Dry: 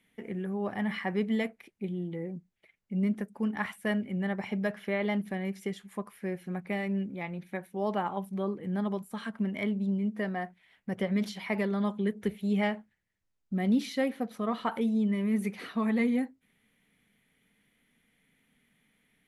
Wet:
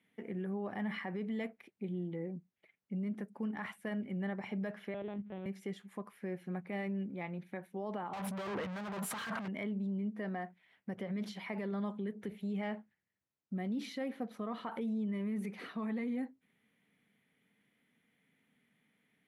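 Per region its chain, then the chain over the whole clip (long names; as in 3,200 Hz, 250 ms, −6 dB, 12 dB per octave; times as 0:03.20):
0:04.94–0:05.46: running median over 25 samples + linear-prediction vocoder at 8 kHz pitch kept
0:08.13–0:09.48: mid-hump overdrive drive 37 dB, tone 4,400 Hz, clips at −19.5 dBFS + parametric band 340 Hz −8 dB 1.1 octaves + compressor whose output falls as the input rises −35 dBFS
whole clip: high-shelf EQ 3,600 Hz −8 dB; brickwall limiter −27.5 dBFS; high-pass filter 120 Hz; level −3 dB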